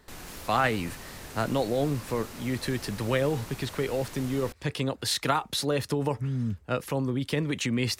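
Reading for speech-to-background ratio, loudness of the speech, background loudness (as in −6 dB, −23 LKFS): 13.0 dB, −29.5 LKFS, −42.5 LKFS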